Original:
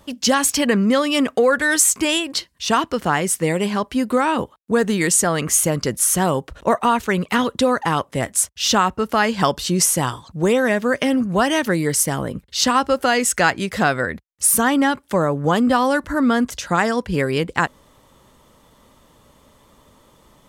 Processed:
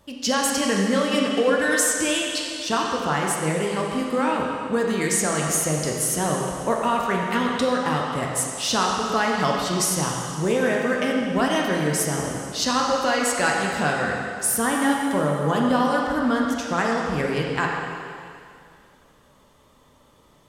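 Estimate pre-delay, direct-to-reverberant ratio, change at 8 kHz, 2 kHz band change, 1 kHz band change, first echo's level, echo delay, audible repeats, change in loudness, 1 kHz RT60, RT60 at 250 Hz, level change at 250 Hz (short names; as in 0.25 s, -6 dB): 11 ms, -1.5 dB, -5.0 dB, -3.0 dB, -3.0 dB, none, none, none, -4.0 dB, 2.3 s, 2.2 s, -4.0 dB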